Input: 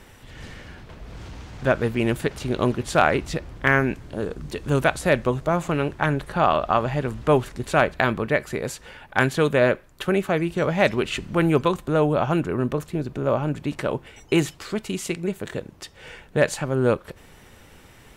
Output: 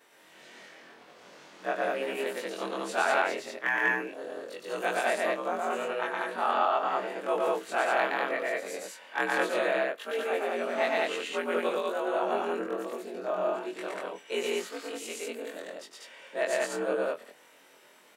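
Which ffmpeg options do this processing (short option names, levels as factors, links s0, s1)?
-filter_complex "[0:a]afftfilt=real='re':imag='-im':win_size=2048:overlap=0.75,highpass=350,afreqshift=62,asplit=2[s0][s1];[s1]aecho=0:1:116.6|192.4:0.891|0.891[s2];[s0][s2]amix=inputs=2:normalize=0,volume=0.531"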